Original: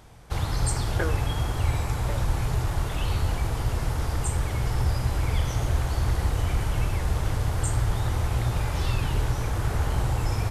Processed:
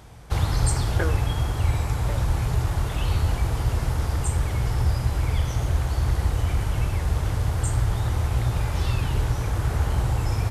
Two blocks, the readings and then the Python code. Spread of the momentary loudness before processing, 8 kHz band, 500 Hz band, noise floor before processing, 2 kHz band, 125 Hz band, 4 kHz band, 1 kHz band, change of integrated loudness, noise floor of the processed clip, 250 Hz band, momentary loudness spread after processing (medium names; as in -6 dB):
2 LU, +0.5 dB, +0.5 dB, -30 dBFS, +0.5 dB, +2.5 dB, +0.5 dB, +0.5 dB, +2.5 dB, -29 dBFS, +1.5 dB, 2 LU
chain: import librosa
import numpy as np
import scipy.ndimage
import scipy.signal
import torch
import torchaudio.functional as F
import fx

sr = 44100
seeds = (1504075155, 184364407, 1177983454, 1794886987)

y = scipy.signal.sosfilt(scipy.signal.butter(2, 47.0, 'highpass', fs=sr, output='sos'), x)
y = fx.low_shelf(y, sr, hz=82.0, db=7.0)
y = fx.rider(y, sr, range_db=5, speed_s=2.0)